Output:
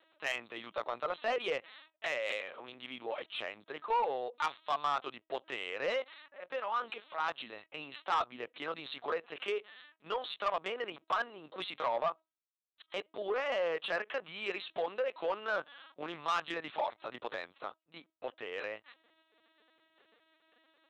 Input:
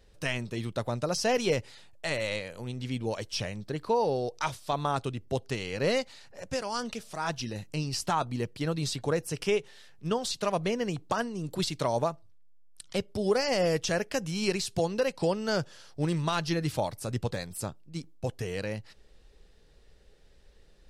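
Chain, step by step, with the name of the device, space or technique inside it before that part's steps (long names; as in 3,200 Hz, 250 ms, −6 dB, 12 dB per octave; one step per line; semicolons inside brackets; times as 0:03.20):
talking toy (linear-prediction vocoder at 8 kHz pitch kept; high-pass filter 650 Hz 12 dB per octave; parametric band 1,200 Hz +6 dB 0.44 octaves; soft clipping −24 dBFS, distortion −13 dB)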